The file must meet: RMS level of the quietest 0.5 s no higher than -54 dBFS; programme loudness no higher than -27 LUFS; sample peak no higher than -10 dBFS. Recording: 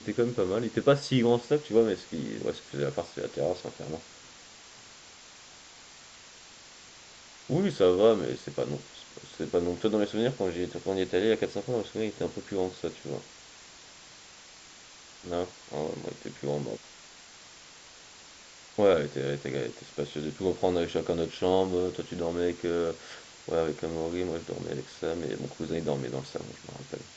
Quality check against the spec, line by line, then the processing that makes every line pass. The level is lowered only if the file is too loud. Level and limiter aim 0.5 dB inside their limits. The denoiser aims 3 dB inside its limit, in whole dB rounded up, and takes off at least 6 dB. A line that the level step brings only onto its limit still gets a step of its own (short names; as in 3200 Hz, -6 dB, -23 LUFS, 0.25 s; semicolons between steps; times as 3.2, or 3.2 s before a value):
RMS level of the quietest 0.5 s -51 dBFS: fail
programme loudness -30.0 LUFS: OK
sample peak -10.5 dBFS: OK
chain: denoiser 6 dB, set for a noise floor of -51 dBFS